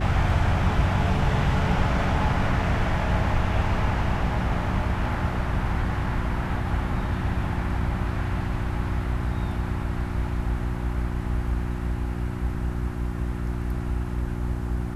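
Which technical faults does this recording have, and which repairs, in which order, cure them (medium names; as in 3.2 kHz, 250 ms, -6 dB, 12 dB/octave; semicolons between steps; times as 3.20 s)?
hum 60 Hz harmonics 6 -29 dBFS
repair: de-hum 60 Hz, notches 6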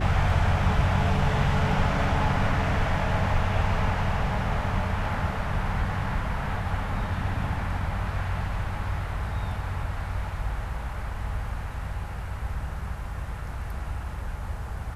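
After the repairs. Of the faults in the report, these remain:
nothing left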